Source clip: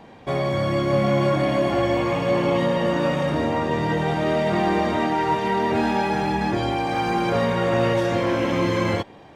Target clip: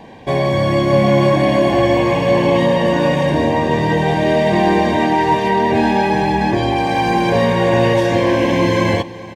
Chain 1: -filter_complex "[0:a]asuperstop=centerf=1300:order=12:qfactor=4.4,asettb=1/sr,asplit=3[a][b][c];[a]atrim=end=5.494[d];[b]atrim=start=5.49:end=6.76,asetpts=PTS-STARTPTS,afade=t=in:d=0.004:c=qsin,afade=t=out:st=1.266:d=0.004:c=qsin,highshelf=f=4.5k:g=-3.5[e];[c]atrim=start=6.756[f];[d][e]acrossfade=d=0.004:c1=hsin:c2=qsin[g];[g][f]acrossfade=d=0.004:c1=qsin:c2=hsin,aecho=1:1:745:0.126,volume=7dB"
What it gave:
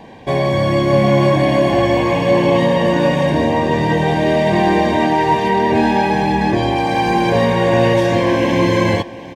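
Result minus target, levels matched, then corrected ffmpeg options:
echo 0.323 s late
-filter_complex "[0:a]asuperstop=centerf=1300:order=12:qfactor=4.4,asettb=1/sr,asplit=3[a][b][c];[a]atrim=end=5.494[d];[b]atrim=start=5.49:end=6.76,asetpts=PTS-STARTPTS,afade=t=in:d=0.004:c=qsin,afade=t=out:st=1.266:d=0.004:c=qsin,highshelf=f=4.5k:g=-3.5[e];[c]atrim=start=6.756[f];[d][e]acrossfade=d=0.004:c1=hsin:c2=qsin[g];[g][f]acrossfade=d=0.004:c1=qsin:c2=hsin,aecho=1:1:422:0.126,volume=7dB"

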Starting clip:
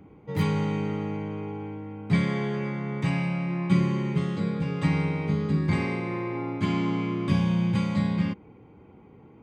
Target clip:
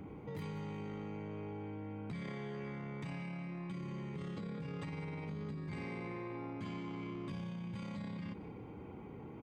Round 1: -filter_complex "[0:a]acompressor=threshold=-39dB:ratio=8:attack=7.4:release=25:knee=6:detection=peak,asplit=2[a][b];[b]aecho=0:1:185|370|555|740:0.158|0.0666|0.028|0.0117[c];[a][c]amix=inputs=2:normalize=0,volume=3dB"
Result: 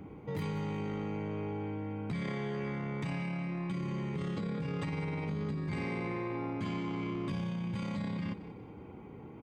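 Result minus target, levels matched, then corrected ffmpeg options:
compressor: peak gain reduction -7 dB
-filter_complex "[0:a]acompressor=threshold=-47dB:ratio=8:attack=7.4:release=25:knee=6:detection=peak,asplit=2[a][b];[b]aecho=0:1:185|370|555|740:0.158|0.0666|0.028|0.0117[c];[a][c]amix=inputs=2:normalize=0,volume=3dB"

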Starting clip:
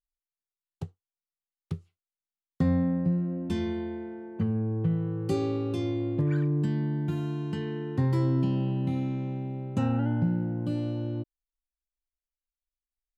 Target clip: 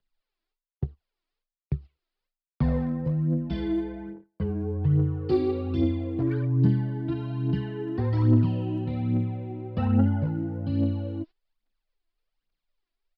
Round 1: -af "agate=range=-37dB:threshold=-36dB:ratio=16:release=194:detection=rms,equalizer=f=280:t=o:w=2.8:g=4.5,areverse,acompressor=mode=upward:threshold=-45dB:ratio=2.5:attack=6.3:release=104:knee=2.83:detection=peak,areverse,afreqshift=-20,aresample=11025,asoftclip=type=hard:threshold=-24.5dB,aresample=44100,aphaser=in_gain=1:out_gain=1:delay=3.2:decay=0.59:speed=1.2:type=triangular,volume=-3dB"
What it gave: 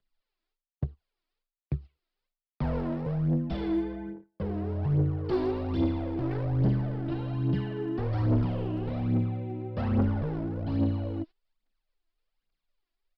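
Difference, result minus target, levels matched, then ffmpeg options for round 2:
hard clip: distortion +17 dB
-af "agate=range=-37dB:threshold=-36dB:ratio=16:release=194:detection=rms,equalizer=f=280:t=o:w=2.8:g=4.5,areverse,acompressor=mode=upward:threshold=-45dB:ratio=2.5:attack=6.3:release=104:knee=2.83:detection=peak,areverse,afreqshift=-20,aresample=11025,asoftclip=type=hard:threshold=-15.5dB,aresample=44100,aphaser=in_gain=1:out_gain=1:delay=3.2:decay=0.59:speed=1.2:type=triangular,volume=-3dB"

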